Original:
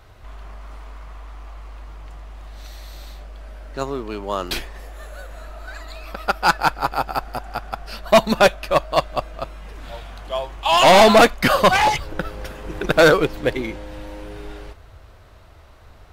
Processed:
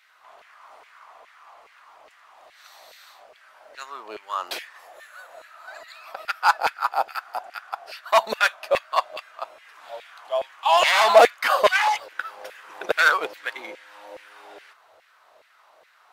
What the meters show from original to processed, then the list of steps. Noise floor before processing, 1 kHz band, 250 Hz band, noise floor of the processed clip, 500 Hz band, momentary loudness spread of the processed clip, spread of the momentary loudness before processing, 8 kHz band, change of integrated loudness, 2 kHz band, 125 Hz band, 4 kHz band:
-46 dBFS, -3.0 dB, -21.5 dB, -57 dBFS, -6.0 dB, 22 LU, 23 LU, -6.0 dB, -3.5 dB, -1.5 dB, under -25 dB, -5.0 dB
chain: LFO high-pass saw down 2.4 Hz 510–2200 Hz; gain -6 dB

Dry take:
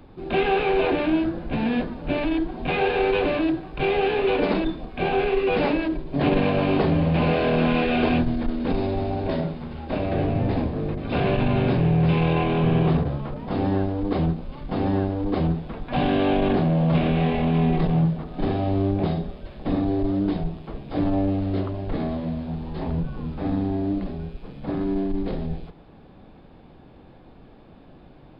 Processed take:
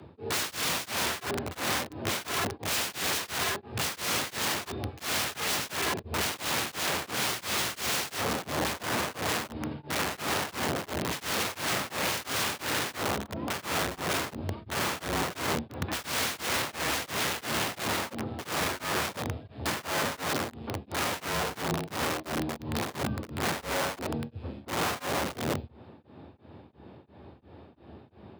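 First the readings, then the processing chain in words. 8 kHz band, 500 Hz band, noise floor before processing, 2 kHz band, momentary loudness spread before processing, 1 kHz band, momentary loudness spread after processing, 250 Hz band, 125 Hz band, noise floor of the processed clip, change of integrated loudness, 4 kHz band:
n/a, -11.0 dB, -48 dBFS, +0.5 dB, 9 LU, -4.0 dB, 5 LU, -14.5 dB, -14.5 dB, -54 dBFS, -7.0 dB, +5.5 dB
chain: wrapped overs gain 23.5 dB; frequency shift +67 Hz; beating tremolo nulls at 2.9 Hz

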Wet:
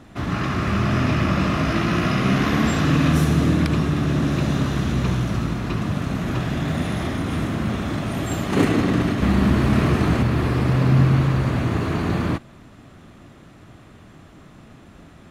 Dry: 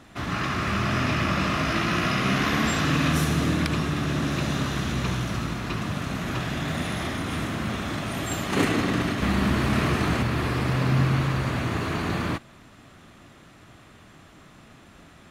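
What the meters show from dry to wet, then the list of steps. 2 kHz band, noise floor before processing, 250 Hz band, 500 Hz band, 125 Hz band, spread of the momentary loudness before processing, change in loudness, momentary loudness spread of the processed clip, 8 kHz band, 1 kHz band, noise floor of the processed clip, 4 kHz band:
-0.5 dB, -51 dBFS, +6.0 dB, +4.5 dB, +6.5 dB, 7 LU, +4.5 dB, 7 LU, -1.5 dB, +1.5 dB, -47 dBFS, -1.0 dB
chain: tilt shelf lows +4 dB, about 780 Hz; gain +2.5 dB

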